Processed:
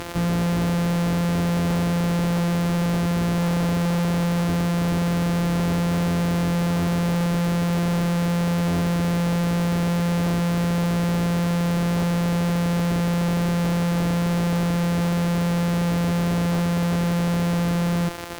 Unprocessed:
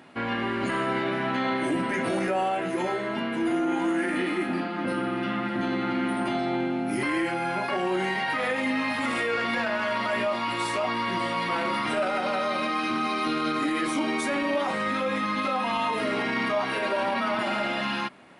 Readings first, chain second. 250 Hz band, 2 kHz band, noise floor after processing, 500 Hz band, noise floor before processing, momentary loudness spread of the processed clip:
+7.0 dB, -4.0 dB, -22 dBFS, +1.0 dB, -30 dBFS, 0 LU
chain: sample sorter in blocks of 256 samples; fuzz box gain 45 dB, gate -53 dBFS; gain -7.5 dB

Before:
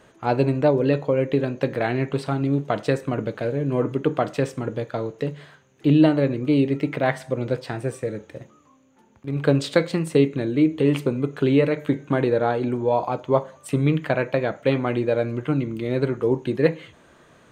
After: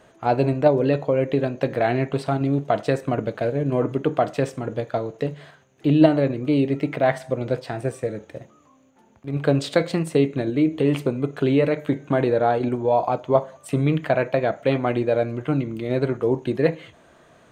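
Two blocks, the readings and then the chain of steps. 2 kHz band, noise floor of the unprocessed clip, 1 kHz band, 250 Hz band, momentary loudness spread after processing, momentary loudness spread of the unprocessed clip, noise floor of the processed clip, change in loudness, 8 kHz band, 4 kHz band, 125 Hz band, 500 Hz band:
-0.5 dB, -55 dBFS, +3.0 dB, -0.5 dB, 8 LU, 9 LU, -55 dBFS, +0.5 dB, -0.5 dB, -0.5 dB, -0.5 dB, +1.0 dB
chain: bell 680 Hz +7 dB 0.32 oct; in parallel at -2 dB: level quantiser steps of 12 dB; on the sum: gain -3.5 dB

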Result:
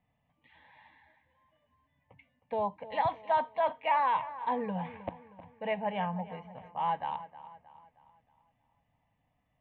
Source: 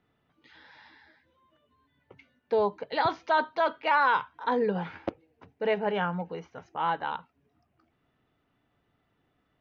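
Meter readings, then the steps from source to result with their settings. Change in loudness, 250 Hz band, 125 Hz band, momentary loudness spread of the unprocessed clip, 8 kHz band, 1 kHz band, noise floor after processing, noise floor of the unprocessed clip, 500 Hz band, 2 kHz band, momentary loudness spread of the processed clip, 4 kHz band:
-4.0 dB, -5.0 dB, -3.0 dB, 14 LU, n/a, -2.0 dB, -77 dBFS, -74 dBFS, -6.0 dB, -10.0 dB, 16 LU, -8.0 dB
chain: air absorption 270 m; fixed phaser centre 1400 Hz, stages 6; dark delay 0.313 s, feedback 45%, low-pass 3200 Hz, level -15 dB

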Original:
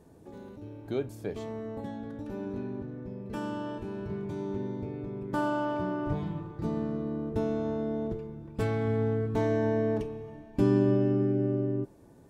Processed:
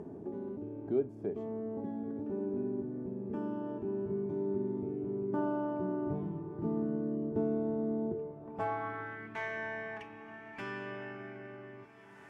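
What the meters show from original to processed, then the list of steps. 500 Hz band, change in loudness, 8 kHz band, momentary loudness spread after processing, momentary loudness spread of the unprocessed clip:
-5.0 dB, -5.5 dB, n/a, 11 LU, 13 LU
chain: upward compressor, threshold -31 dBFS; band-pass sweep 350 Hz -> 2000 Hz, 8.06–9.24; thirty-one-band EQ 315 Hz -10 dB, 500 Hz -11 dB, 4000 Hz -7 dB; on a send: diffused feedback echo 1.408 s, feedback 46%, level -16 dB; on the sum: gain +8 dB

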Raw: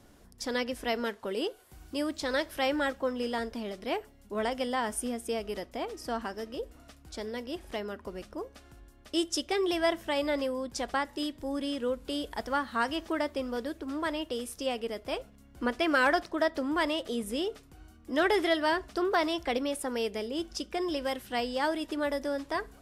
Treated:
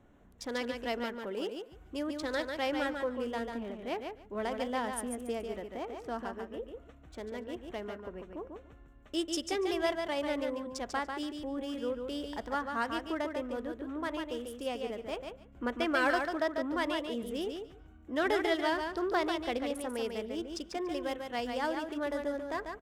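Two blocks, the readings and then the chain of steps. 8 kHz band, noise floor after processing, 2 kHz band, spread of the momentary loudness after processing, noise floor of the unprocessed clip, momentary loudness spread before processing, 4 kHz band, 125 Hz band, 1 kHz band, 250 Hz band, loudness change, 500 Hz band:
-5.0 dB, -56 dBFS, -3.5 dB, 11 LU, -57 dBFS, 10 LU, -5.0 dB, -2.5 dB, -3.0 dB, -3.0 dB, -3.5 dB, -3.0 dB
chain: Wiener smoothing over 9 samples; feedback echo 0.144 s, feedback 16%, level -5.5 dB; gain -4 dB

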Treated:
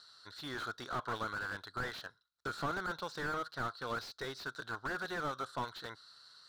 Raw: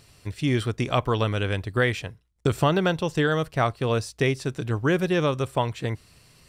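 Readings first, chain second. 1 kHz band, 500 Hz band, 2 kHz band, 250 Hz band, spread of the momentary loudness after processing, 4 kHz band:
-10.0 dB, -19.0 dB, -9.5 dB, -20.0 dB, 10 LU, -12.0 dB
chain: double band-pass 2400 Hz, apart 1.5 oct; slew limiter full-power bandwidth 9 Hz; gain +7.5 dB

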